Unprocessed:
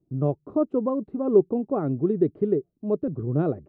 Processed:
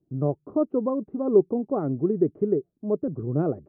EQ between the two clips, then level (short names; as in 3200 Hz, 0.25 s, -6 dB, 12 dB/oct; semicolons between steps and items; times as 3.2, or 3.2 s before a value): LPF 1400 Hz 12 dB/oct; low shelf 85 Hz -6 dB; 0.0 dB